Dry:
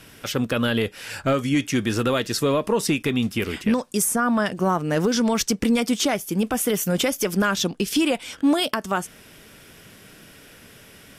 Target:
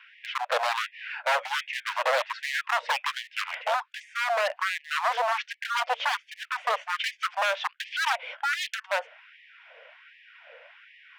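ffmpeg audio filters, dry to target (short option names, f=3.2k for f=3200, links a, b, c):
-af "highpass=f=220:w=0.5412,highpass=f=220:w=1.3066,equalizer=f=230:t=q:w=4:g=3,equalizer=f=350:t=q:w=4:g=6,equalizer=f=570:t=q:w=4:g=3,equalizer=f=810:t=q:w=4:g=-5,equalizer=f=1.2k:t=q:w=4:g=-9,equalizer=f=1.7k:t=q:w=4:g=-4,lowpass=f=2.4k:w=0.5412,lowpass=f=2.4k:w=1.3066,aeval=exprs='0.0841*(abs(mod(val(0)/0.0841+3,4)-2)-1)':c=same,afftfilt=real='re*gte(b*sr/1024,450*pow(1700/450,0.5+0.5*sin(2*PI*1.3*pts/sr)))':imag='im*gte(b*sr/1024,450*pow(1700/450,0.5+0.5*sin(2*PI*1.3*pts/sr)))':win_size=1024:overlap=0.75,volume=4.5dB"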